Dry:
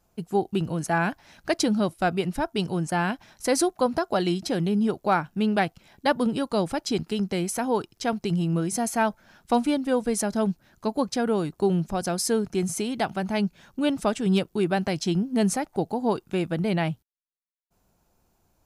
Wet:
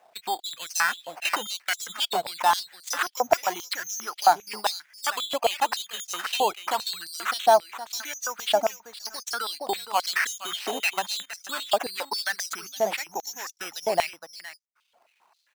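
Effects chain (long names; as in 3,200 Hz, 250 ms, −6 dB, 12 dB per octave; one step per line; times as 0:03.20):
variable-slope delta modulation 64 kbit/s
reverb reduction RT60 1.3 s
spectral tilt −2 dB per octave
brickwall limiter −17.5 dBFS, peak gain reduction 8.5 dB
downward compressor 3 to 1, threshold −27 dBFS, peak gain reduction 6 dB
tempo change 1.2×
sample-and-hold swept by an LFO 10×, swing 60% 0.21 Hz
on a send: single-tap delay 466 ms −11 dB
on the sum: high-pass on a step sequencer 7.5 Hz 710–5,800 Hz
level +7.5 dB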